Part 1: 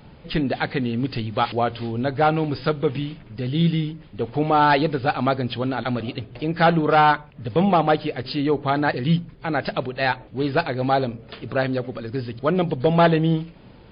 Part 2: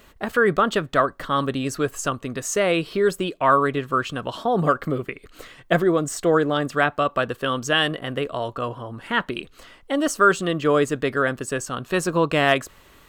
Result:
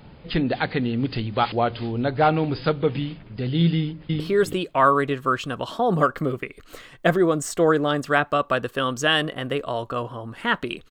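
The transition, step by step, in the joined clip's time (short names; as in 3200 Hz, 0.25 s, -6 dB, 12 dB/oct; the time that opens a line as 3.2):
part 1
3.76–4.2 echo throw 0.33 s, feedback 20%, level -1 dB
4.2 switch to part 2 from 2.86 s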